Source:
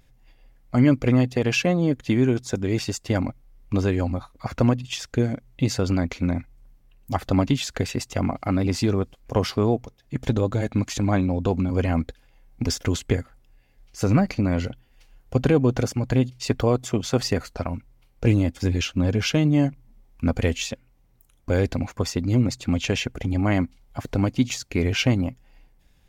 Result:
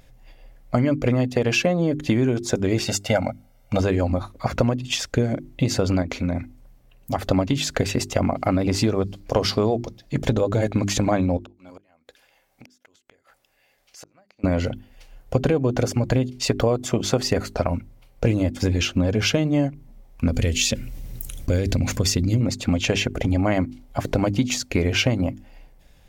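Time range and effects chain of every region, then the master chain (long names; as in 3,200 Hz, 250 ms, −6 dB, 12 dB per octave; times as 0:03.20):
0:02.86–0:03.80: high-pass filter 230 Hz 6 dB per octave + comb filter 1.4 ms, depth 85%
0:06.02–0:07.25: high-pass filter 40 Hz + downward compressor 2.5 to 1, threshold −28 dBFS
0:08.99–0:10.19: parametric band 4,600 Hz +7 dB 0.87 octaves + mains-hum notches 60/120/180/240/300 Hz
0:11.37–0:14.44: high-pass filter 1,000 Hz 6 dB per octave + gate with flip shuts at −22 dBFS, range −36 dB + downward compressor 2.5 to 1, threshold −54 dBFS
0:20.28–0:22.41: parametric band 870 Hz −14 dB 2.2 octaves + envelope flattener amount 50%
whole clip: parametric band 590 Hz +5.5 dB 0.61 octaves; mains-hum notches 50/100/150/200/250/300/350/400 Hz; downward compressor, threshold −23 dBFS; level +6.5 dB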